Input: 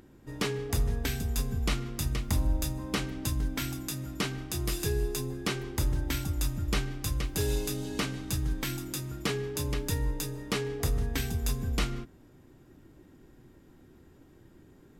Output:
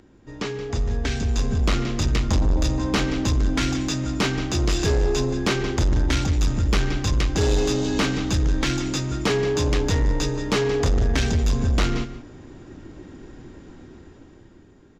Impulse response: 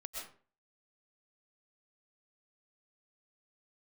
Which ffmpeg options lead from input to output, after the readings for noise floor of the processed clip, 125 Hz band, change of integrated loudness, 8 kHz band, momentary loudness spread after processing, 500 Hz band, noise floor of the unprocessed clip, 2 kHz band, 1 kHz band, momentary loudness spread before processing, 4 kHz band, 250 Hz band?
−49 dBFS, +9.0 dB, +9.0 dB, +5.5 dB, 8 LU, +11.0 dB, −57 dBFS, +9.0 dB, +10.5 dB, 4 LU, +8.5 dB, +11.0 dB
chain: -filter_complex "[0:a]acrossover=split=640|1500[link_01][link_02][link_03];[link_03]alimiter=level_in=3.5dB:limit=-24dB:level=0:latency=1:release=31,volume=-3.5dB[link_04];[link_01][link_02][link_04]amix=inputs=3:normalize=0,aresample=16000,aresample=44100,dynaudnorm=framelen=230:gausssize=11:maxgain=11.5dB,aecho=1:1:176:0.188,asoftclip=type=tanh:threshold=-18dB,equalizer=frequency=140:width_type=o:width=0.34:gain=-5,volume=3dB"

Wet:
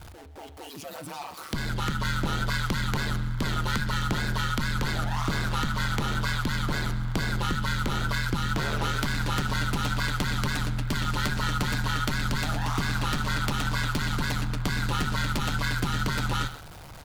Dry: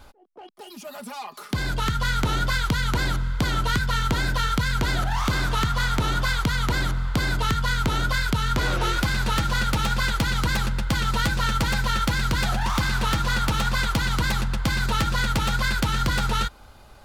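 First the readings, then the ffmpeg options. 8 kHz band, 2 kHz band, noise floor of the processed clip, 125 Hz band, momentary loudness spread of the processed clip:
−4.0 dB, −4.0 dB, −44 dBFS, −2.5 dB, 5 LU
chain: -filter_complex "[0:a]aeval=exprs='val(0)+0.5*0.015*sgn(val(0))':channel_layout=same,bandreject=frequency=118.2:width_type=h:width=4,bandreject=frequency=236.4:width_type=h:width=4,bandreject=frequency=354.6:width_type=h:width=4,bandreject=frequency=472.8:width_type=h:width=4,bandreject=frequency=591:width_type=h:width=4,bandreject=frequency=709.2:width_type=h:width=4,bandreject=frequency=827.4:width_type=h:width=4,bandreject=frequency=945.6:width_type=h:width=4,bandreject=frequency=1063.8:width_type=h:width=4,bandreject=frequency=1182:width_type=h:width=4,bandreject=frequency=1300.2:width_type=h:width=4,bandreject=frequency=1418.4:width_type=h:width=4,bandreject=frequency=1536.6:width_type=h:width=4,bandreject=frequency=1654.8:width_type=h:width=4,bandreject=frequency=1773:width_type=h:width=4,bandreject=frequency=1891.2:width_type=h:width=4,bandreject=frequency=2009.4:width_type=h:width=4,bandreject=frequency=2127.6:width_type=h:width=4,bandreject=frequency=2245.8:width_type=h:width=4,bandreject=frequency=2364:width_type=h:width=4,bandreject=frequency=2482.2:width_type=h:width=4,bandreject=frequency=2600.4:width_type=h:width=4,bandreject=frequency=2718.6:width_type=h:width=4,bandreject=frequency=2836.8:width_type=h:width=4,bandreject=frequency=2955:width_type=h:width=4,bandreject=frequency=3073.2:width_type=h:width=4,bandreject=frequency=3191.4:width_type=h:width=4,bandreject=frequency=3309.6:width_type=h:width=4,bandreject=frequency=3427.8:width_type=h:width=4,bandreject=frequency=3546:width_type=h:width=4,bandreject=frequency=3664.2:width_type=h:width=4,bandreject=frequency=3782.4:width_type=h:width=4,bandreject=frequency=3900.6:width_type=h:width=4,bandreject=frequency=4018.8:width_type=h:width=4,bandreject=frequency=4137:width_type=h:width=4,bandreject=frequency=4255.2:width_type=h:width=4,bandreject=frequency=4373.4:width_type=h:width=4,bandreject=frequency=4491.6:width_type=h:width=4,bandreject=frequency=4609.8:width_type=h:width=4,asplit=2[link_01][link_02];[link_02]aecho=0:1:132:0.15[link_03];[link_01][link_03]amix=inputs=2:normalize=0,aeval=exprs='val(0)*sin(2*PI*75*n/s)':channel_layout=same,volume=-2dB"

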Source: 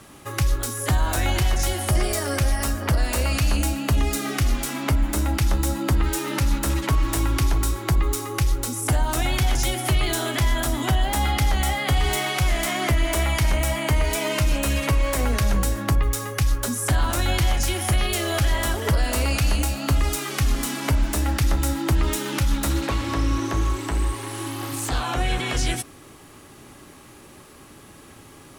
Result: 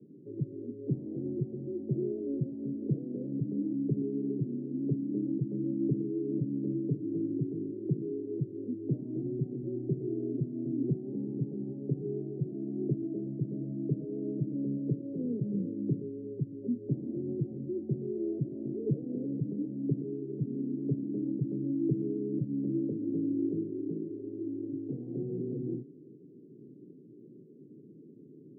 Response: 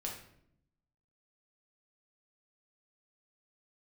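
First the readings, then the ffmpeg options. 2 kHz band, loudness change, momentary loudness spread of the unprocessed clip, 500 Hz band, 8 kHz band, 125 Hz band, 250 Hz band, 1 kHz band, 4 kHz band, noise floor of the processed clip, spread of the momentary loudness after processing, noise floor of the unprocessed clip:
below −40 dB, −11.0 dB, 3 LU, −7.0 dB, below −40 dB, −11.5 dB, −2.5 dB, below −40 dB, below −40 dB, −53 dBFS, 7 LU, −46 dBFS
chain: -af "asuperpass=centerf=240:order=12:qfactor=0.77,volume=-2.5dB"

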